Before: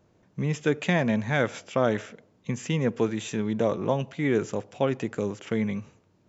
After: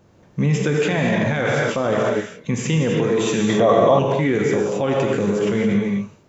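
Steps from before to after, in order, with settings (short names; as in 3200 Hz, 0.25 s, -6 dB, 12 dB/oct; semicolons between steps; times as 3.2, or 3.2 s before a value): non-linear reverb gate 0.3 s flat, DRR 0 dB; limiter -19 dBFS, peak gain reduction 10.5 dB; 3.49–3.99 small resonant body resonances 690/1100/1900/3300 Hz, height 12 dB, ringing for 20 ms; gain +8.5 dB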